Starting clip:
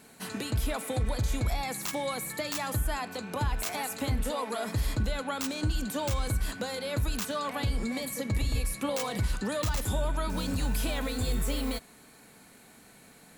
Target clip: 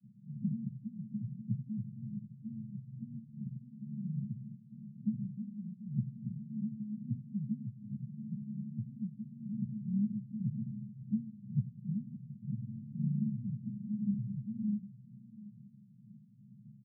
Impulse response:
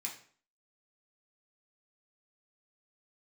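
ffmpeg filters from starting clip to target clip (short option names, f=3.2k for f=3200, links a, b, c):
-filter_complex "[0:a]aemphasis=mode=production:type=50kf,aecho=1:1:7.1:0.62,adynamicequalizer=threshold=0.00562:dfrequency=170:dqfactor=1.5:tfrequency=170:tqfactor=1.5:attack=5:release=100:ratio=0.375:range=2:mode=boostabove:tftype=bell,acompressor=threshold=-30dB:ratio=5,asplit=2[a][b];[b]asetrate=52444,aresample=44100,atempo=0.840896,volume=-6dB[c];[a][c]amix=inputs=2:normalize=0,tremolo=f=2.5:d=0.43,asetrate=35015,aresample=44100,asuperpass=centerf=160:order=12:qfactor=1.5,aecho=1:1:733:0.133,volume=5dB"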